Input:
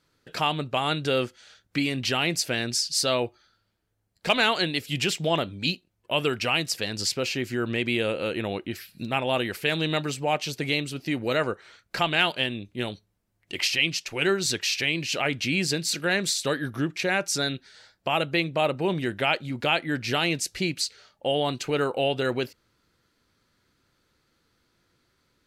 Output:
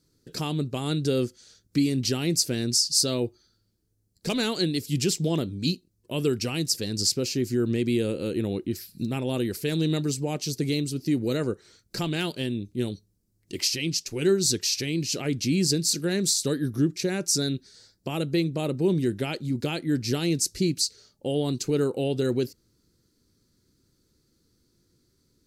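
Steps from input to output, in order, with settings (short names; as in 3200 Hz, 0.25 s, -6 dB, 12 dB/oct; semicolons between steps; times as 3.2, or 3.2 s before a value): band shelf 1400 Hz -15.5 dB 2.9 oct; gain +4.5 dB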